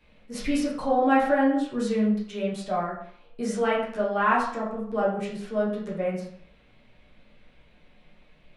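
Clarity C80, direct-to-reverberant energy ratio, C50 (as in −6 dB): 8.0 dB, −7.5 dB, 4.0 dB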